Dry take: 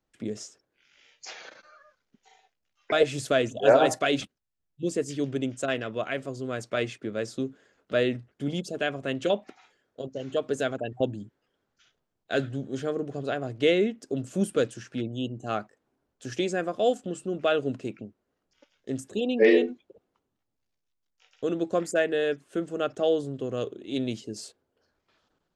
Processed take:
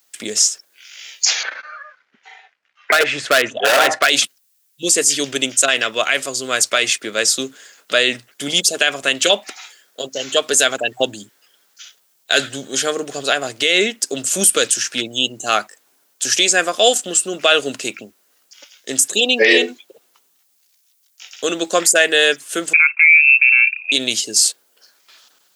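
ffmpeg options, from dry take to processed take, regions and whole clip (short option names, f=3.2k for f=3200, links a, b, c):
-filter_complex "[0:a]asettb=1/sr,asplit=3[a][b][c];[a]atrim=end=1.434[d];[b]atrim=start=1.43:end=4.1,asetpts=PTS-STARTPTS,afade=t=in:d=0.004:c=qsin,afade=t=out:st=2.666:d=0.004:c=qsin,lowpass=f=1.8k:t=q:w=1.6,asoftclip=type=hard:threshold=-17dB[e];[c]atrim=start=4.096[f];[d][e]acrossfade=d=0.004:c1=hsin:c2=qsin[g];[g][f]acrossfade=d=0.004:c1=qsin:c2=hsin,asettb=1/sr,asplit=3[h][i][j];[h]atrim=end=22.734[k];[i]atrim=start=22.73:end=23.92,asetpts=PTS-STARTPTS,afade=t=in:d=0.004:c=qsin,afade=t=out:st=1.186:d=0.004:c=qsin,agate=range=-11dB:threshold=-40dB:ratio=16:release=100:detection=peak,asubboost=boost=9:cutoff=170,lowpass=f=2.4k:t=q:w=0.5098,lowpass=f=2.4k:t=q:w=0.6013,lowpass=f=2.4k:t=q:w=0.9,lowpass=f=2.4k:t=q:w=2.563,afreqshift=-2800[l];[j]atrim=start=23.916[m];[k][l]acrossfade=d=0.004:c1=hsin:c2=qsin[n];[n][m]acrossfade=d=0.004:c1=qsin:c2=hsin,highpass=84,aderivative,alimiter=level_in=32dB:limit=-1dB:release=50:level=0:latency=1,volume=-1dB"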